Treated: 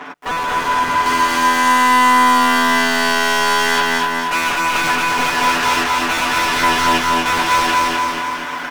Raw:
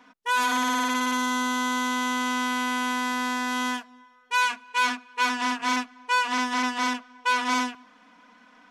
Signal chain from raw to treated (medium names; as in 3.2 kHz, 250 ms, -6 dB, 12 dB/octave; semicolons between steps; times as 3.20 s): cycle switcher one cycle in 3, muted; peaking EQ 4.3 kHz -4 dB 0.39 oct; comb 6.9 ms, depth 86%; overdrive pedal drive 38 dB, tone 1.5 kHz, clips at -9 dBFS, from 1.06 s tone 5.1 kHz; feedback delay 247 ms, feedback 47%, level -4 dB; bit-crushed delay 223 ms, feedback 35%, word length 7-bit, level -4.5 dB; trim -3.5 dB